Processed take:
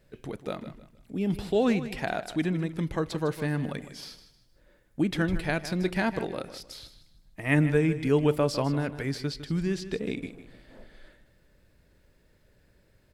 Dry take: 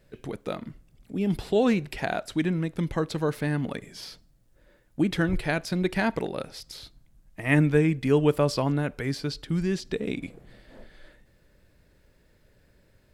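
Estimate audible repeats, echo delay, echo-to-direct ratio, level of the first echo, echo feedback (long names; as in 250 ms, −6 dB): 3, 155 ms, −12.5 dB, −13.0 dB, 32%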